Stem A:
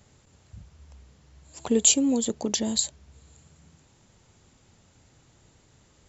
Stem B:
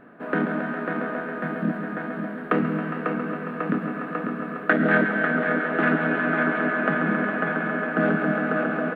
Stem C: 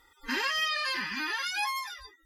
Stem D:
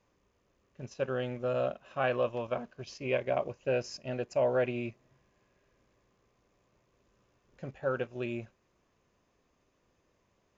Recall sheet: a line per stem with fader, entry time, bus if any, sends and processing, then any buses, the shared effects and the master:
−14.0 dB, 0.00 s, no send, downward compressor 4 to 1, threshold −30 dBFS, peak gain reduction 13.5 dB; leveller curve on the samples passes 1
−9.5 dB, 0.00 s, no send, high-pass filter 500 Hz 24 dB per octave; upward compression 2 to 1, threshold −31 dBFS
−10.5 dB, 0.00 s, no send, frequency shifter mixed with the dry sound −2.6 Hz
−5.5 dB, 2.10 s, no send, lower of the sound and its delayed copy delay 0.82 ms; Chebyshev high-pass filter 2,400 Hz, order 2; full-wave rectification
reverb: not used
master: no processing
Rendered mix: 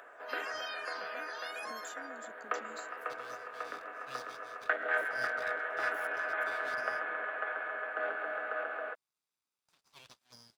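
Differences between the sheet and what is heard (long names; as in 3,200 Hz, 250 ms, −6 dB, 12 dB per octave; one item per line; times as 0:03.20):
stem A −14.0 dB → −22.0 dB
master: extra high-pass filter 370 Hz 6 dB per octave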